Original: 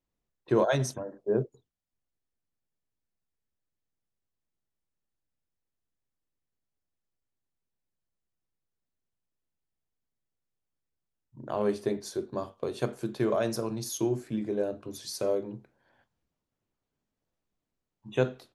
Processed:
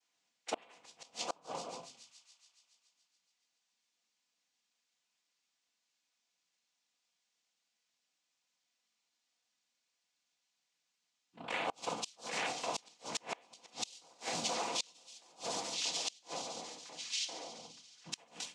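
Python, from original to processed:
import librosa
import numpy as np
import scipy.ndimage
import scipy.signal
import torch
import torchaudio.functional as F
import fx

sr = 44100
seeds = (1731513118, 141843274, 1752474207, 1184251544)

p1 = fx.noise_vocoder(x, sr, seeds[0], bands=4)
p2 = scipy.signal.sosfilt(scipy.signal.butter(2, 5200.0, 'lowpass', fs=sr, output='sos'), p1)
p3 = fx.high_shelf(p2, sr, hz=2800.0, db=-2.0)
p4 = fx.over_compress(p3, sr, threshold_db=-42.0, ratio=-1.0)
p5 = p3 + F.gain(torch.from_numpy(p4), 0.0).numpy()
p6 = np.diff(p5, prepend=0.0)
p7 = fx.echo_pitch(p6, sr, ms=103, semitones=-1, count=2, db_per_echo=-6.0)
p8 = p7 + 0.32 * np.pad(p7, (int(4.1 * sr / 1000.0), 0))[:len(p7)]
p9 = fx.echo_wet_highpass(p8, sr, ms=141, feedback_pct=73, hz=3500.0, wet_db=-11.5)
p10 = fx.room_shoebox(p9, sr, seeds[1], volume_m3=210.0, walls='furnished', distance_m=0.72)
p11 = fx.gate_flip(p10, sr, shuts_db=-33.0, range_db=-30)
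y = F.gain(torch.from_numpy(p11), 10.0).numpy()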